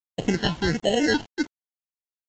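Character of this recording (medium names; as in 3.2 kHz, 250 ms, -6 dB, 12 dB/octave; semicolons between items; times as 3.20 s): aliases and images of a low sample rate 1.2 kHz, jitter 0%; phasing stages 6, 1.4 Hz, lowest notch 500–1500 Hz; a quantiser's noise floor 8-bit, dither none; AAC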